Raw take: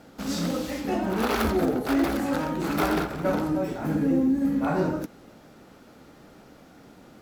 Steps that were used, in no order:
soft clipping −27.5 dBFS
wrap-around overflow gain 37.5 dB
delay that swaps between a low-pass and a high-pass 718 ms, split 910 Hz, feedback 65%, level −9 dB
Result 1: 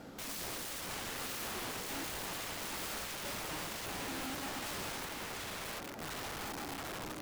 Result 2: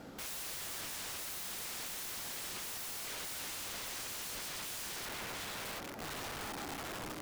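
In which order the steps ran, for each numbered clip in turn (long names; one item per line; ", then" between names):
delay that swaps between a low-pass and a high-pass, then soft clipping, then wrap-around overflow
delay that swaps between a low-pass and a high-pass, then wrap-around overflow, then soft clipping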